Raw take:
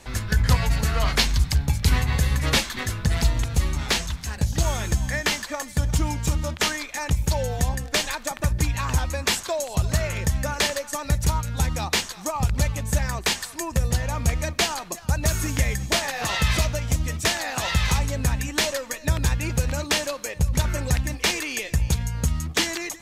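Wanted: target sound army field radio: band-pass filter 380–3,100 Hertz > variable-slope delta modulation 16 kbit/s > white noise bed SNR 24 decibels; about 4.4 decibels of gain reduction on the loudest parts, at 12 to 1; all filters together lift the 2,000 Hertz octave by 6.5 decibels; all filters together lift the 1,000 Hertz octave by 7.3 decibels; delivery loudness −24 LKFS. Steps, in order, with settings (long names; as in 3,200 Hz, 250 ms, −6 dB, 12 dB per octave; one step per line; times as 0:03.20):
parametric band 1,000 Hz +7.5 dB
parametric band 2,000 Hz +6.5 dB
downward compressor 12 to 1, threshold −18 dBFS
band-pass filter 380–3,100 Hz
variable-slope delta modulation 16 kbit/s
white noise bed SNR 24 dB
level +5.5 dB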